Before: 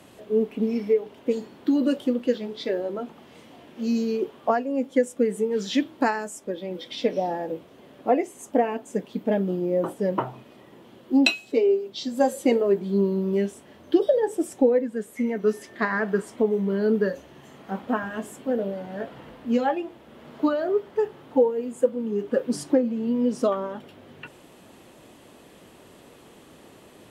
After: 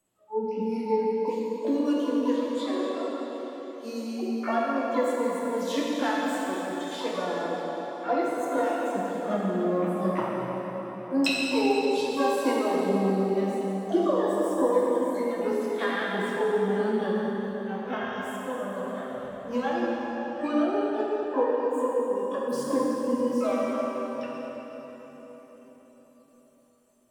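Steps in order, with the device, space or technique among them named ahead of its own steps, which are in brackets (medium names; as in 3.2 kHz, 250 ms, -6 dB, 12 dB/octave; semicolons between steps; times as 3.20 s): spectral noise reduction 23 dB; 17.01–17.72 s: peaking EQ 7 kHz -12.5 dB 0.7 oct; shimmer-style reverb (harmony voices +12 st -9 dB; reverberation RT60 4.7 s, pre-delay 6 ms, DRR -5 dB); trim -8 dB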